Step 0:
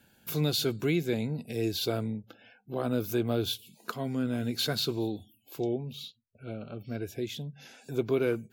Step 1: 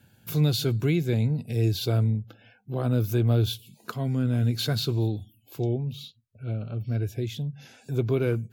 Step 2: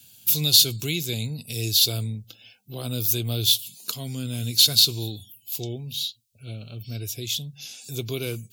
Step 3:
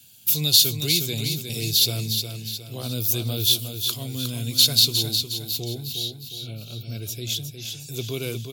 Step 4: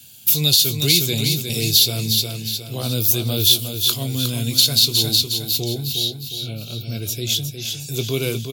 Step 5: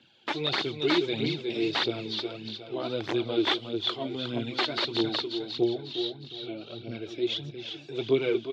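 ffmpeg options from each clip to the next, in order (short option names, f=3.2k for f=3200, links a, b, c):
-af "equalizer=f=110:t=o:w=1:g=14"
-af "aexciter=amount=11.3:drive=4.5:freq=2.6k,volume=-6dB"
-af "aecho=1:1:360|720|1080|1440|1800:0.447|0.205|0.0945|0.0435|0.02"
-filter_complex "[0:a]alimiter=limit=-9dB:level=0:latency=1:release=246,asplit=2[a][b];[b]adelay=22,volume=-13dB[c];[a][c]amix=inputs=2:normalize=0,volume=6.5dB"
-af "aeval=exprs='(mod(2*val(0)+1,2)-1)/2':c=same,aphaser=in_gain=1:out_gain=1:delay=3.5:decay=0.52:speed=1.6:type=triangular,highpass=290,equalizer=f=340:t=q:w=4:g=8,equalizer=f=830:t=q:w=4:g=3,equalizer=f=2.6k:t=q:w=4:g=-5,lowpass=f=3k:w=0.5412,lowpass=f=3k:w=1.3066,volume=-4dB"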